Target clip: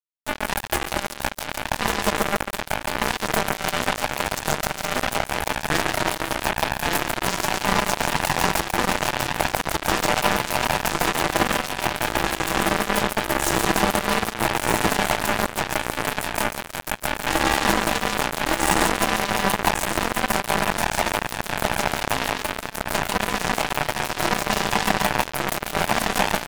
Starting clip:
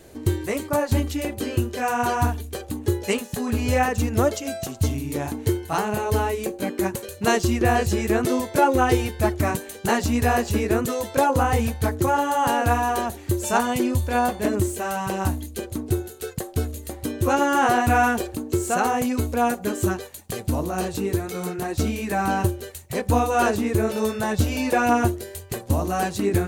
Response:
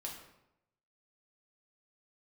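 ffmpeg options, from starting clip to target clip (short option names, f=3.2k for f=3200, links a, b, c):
-filter_complex "[0:a]afftfilt=real='real(if(lt(b,1008),b+24*(1-2*mod(floor(b/24),2)),b),0)':imag='imag(if(lt(b,1008),b+24*(1-2*mod(floor(b/24),2)),b),0)':win_size=2048:overlap=0.75,lowshelf=f=250:g=-3.5,asplit=2[a][b];[b]adelay=1159,lowpass=f=4.6k:p=1,volume=-3dB,asplit=2[c][d];[d]adelay=1159,lowpass=f=4.6k:p=1,volume=0.39,asplit=2[e][f];[f]adelay=1159,lowpass=f=4.6k:p=1,volume=0.39,asplit=2[g][h];[h]adelay=1159,lowpass=f=4.6k:p=1,volume=0.39,asplit=2[i][j];[j]adelay=1159,lowpass=f=4.6k:p=1,volume=0.39[k];[c][e][g][i][k]amix=inputs=5:normalize=0[l];[a][l]amix=inputs=2:normalize=0,alimiter=limit=-14.5dB:level=0:latency=1:release=140,aeval=exprs='0.188*(cos(1*acos(clip(val(0)/0.188,-1,1)))-cos(1*PI/2))+0.0237*(cos(6*acos(clip(val(0)/0.188,-1,1)))-cos(6*PI/2))':c=same,asuperstop=centerf=2200:order=8:qfactor=3.7,aecho=1:1:6:0.34,asplit=2[m][n];[n]aecho=0:1:140|280|420|560|700|840:0.596|0.292|0.143|0.0701|0.0343|0.0168[o];[m][o]amix=inputs=2:normalize=0,afftfilt=real='re*lt(hypot(re,im),0.794)':imag='im*lt(hypot(re,im),0.794)':win_size=1024:overlap=0.75,acrusher=bits=2:mix=0:aa=0.5,volume=4.5dB"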